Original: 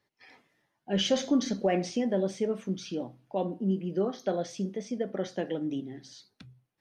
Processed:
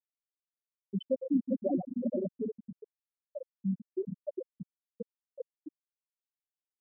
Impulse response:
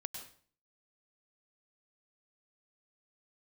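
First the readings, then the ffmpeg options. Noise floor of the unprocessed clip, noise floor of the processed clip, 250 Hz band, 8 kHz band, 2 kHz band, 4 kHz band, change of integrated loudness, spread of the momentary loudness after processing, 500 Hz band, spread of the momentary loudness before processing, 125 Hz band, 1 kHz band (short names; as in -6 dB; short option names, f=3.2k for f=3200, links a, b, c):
-81 dBFS, under -85 dBFS, -5.0 dB, under -35 dB, under -40 dB, under -20 dB, -4.0 dB, 20 LU, -7.5 dB, 10 LU, -7.0 dB, -13.5 dB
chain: -filter_complex "[0:a]asplit=2[a][b];[b]adelay=393,lowpass=f=1.9k:p=1,volume=-4dB,asplit=2[c][d];[d]adelay=393,lowpass=f=1.9k:p=1,volume=0.48,asplit=2[e][f];[f]adelay=393,lowpass=f=1.9k:p=1,volume=0.48,asplit=2[g][h];[h]adelay=393,lowpass=f=1.9k:p=1,volume=0.48,asplit=2[i][j];[j]adelay=393,lowpass=f=1.9k:p=1,volume=0.48,asplit=2[k][l];[l]adelay=393,lowpass=f=1.9k:p=1,volume=0.48[m];[a][c][e][g][i][k][m]amix=inputs=7:normalize=0[n];[1:a]atrim=start_sample=2205[o];[n][o]afir=irnorm=-1:irlink=0,afftfilt=real='re*gte(hypot(re,im),0.316)':imag='im*gte(hypot(re,im),0.316)':win_size=1024:overlap=0.75"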